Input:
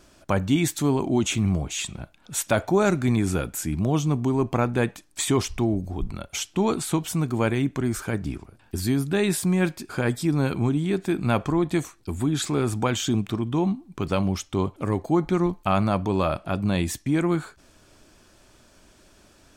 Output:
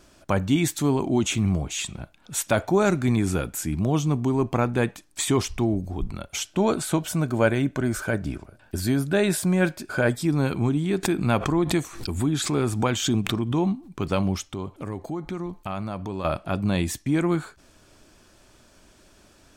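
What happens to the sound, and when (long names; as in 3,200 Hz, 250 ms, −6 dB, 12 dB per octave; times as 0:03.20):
0:06.45–0:10.13: hollow resonant body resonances 600/1,500 Hz, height 10 dB, ringing for 30 ms
0:11.03–0:13.92: background raised ahead of every attack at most 89 dB per second
0:14.46–0:16.25: downward compressor 2.5 to 1, threshold −31 dBFS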